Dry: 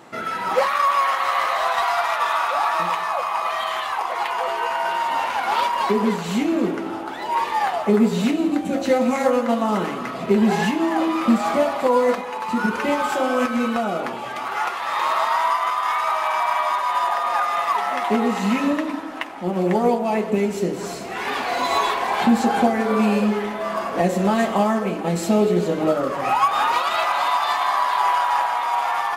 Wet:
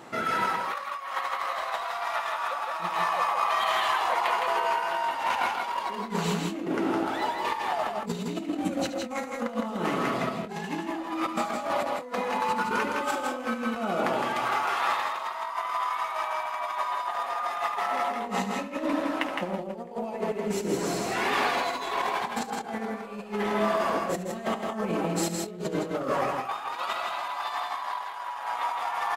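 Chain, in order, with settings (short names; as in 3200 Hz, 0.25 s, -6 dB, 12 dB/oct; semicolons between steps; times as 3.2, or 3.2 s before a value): 17.96–20.21 bell 550 Hz +9 dB 0.24 oct; negative-ratio compressor -25 dBFS, ratio -0.5; tapped delay 72/162/186 ms -13/-4/-13 dB; gain -5.5 dB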